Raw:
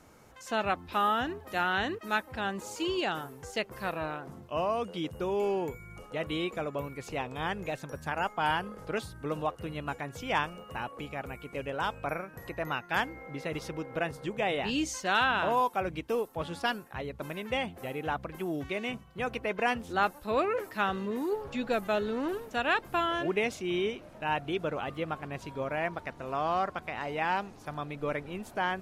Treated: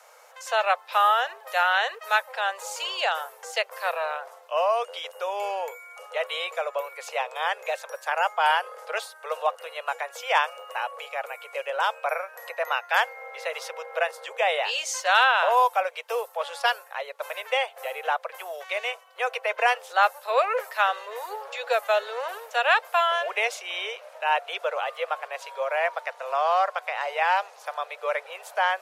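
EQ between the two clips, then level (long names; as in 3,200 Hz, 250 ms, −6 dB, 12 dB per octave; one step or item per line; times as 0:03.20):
Butterworth high-pass 490 Hz 72 dB per octave
+7.5 dB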